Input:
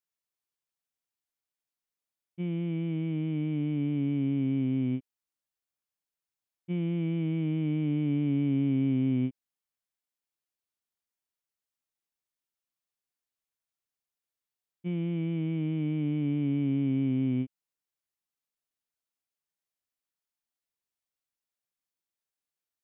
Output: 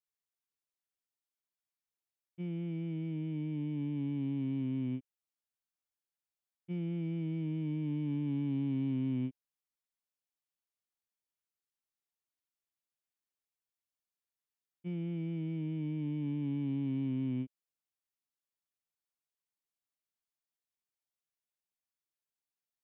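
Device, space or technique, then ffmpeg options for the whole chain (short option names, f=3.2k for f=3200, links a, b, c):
one-band saturation: -filter_complex "[0:a]acrossover=split=340|2800[a][b][c];[b]asoftclip=type=tanh:threshold=-38dB[d];[a][d][c]amix=inputs=3:normalize=0,volume=-6dB"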